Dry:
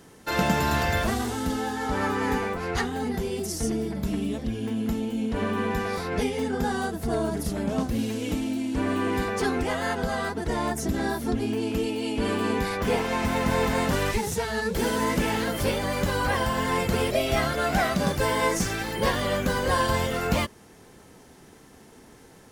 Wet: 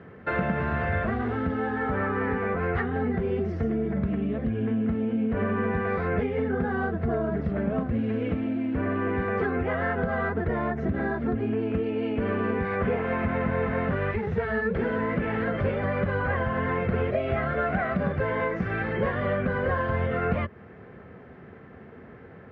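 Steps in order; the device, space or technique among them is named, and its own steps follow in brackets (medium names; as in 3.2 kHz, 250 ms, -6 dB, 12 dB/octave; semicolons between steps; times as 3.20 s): bass amplifier (compression, threshold -28 dBFS, peak gain reduction 10 dB; cabinet simulation 77–2000 Hz, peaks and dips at 88 Hz +5 dB, 300 Hz -8 dB, 900 Hz -10 dB); trim +7 dB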